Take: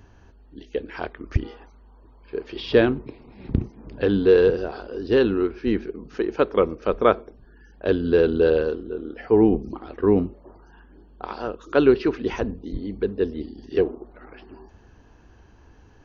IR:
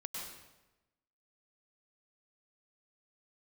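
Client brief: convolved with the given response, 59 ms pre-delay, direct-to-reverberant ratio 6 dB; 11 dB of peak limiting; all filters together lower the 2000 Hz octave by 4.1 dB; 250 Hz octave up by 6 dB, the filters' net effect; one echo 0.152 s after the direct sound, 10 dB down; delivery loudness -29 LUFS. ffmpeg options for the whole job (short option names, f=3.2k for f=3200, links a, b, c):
-filter_complex "[0:a]equalizer=f=250:t=o:g=8,equalizer=f=2k:t=o:g=-6,alimiter=limit=-12dB:level=0:latency=1,aecho=1:1:152:0.316,asplit=2[a][b];[1:a]atrim=start_sample=2205,adelay=59[c];[b][c]afir=irnorm=-1:irlink=0,volume=-5.5dB[d];[a][d]amix=inputs=2:normalize=0,volume=-6dB"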